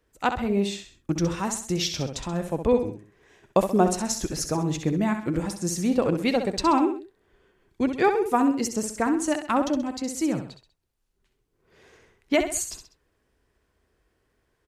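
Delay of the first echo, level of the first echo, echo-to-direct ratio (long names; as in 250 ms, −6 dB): 65 ms, −8.0 dB, −7.0 dB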